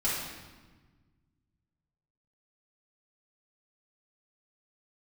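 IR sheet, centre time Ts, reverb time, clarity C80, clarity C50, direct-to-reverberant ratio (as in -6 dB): 80 ms, 1.3 s, 2.5 dB, -0.5 dB, -9.5 dB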